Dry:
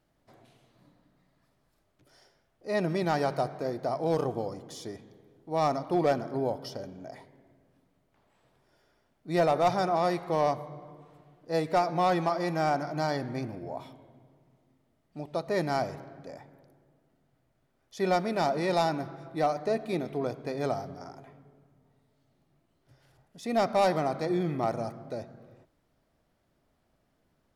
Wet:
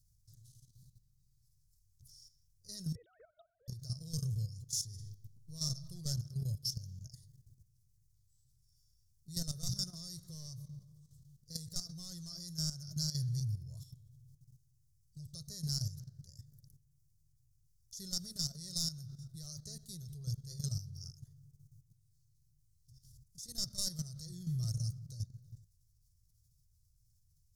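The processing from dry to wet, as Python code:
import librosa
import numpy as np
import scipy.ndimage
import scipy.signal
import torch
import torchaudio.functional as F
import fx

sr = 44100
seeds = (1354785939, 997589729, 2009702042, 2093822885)

y = fx.sine_speech(x, sr, at=(2.95, 3.68))
y = fx.reverb_throw(y, sr, start_s=4.86, length_s=0.78, rt60_s=1.3, drr_db=4.5)
y = scipy.signal.sosfilt(scipy.signal.ellip(3, 1.0, 40, [110.0, 5700.0], 'bandstop', fs=sr, output='sos'), y)
y = fx.level_steps(y, sr, step_db=12)
y = y * librosa.db_to_amplitude(13.5)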